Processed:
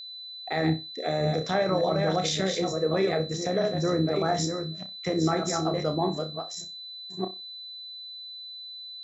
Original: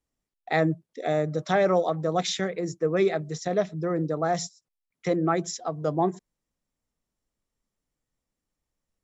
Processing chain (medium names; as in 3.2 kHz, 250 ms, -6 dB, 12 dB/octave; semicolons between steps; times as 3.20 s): chunks repeated in reverse 604 ms, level -6.5 dB; peak limiter -18.5 dBFS, peak gain reduction 9 dB; AM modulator 71 Hz, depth 25%; on a send: flutter echo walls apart 5.4 m, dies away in 0.24 s; on the sum: whistle 4 kHz -41 dBFS; trim +2.5 dB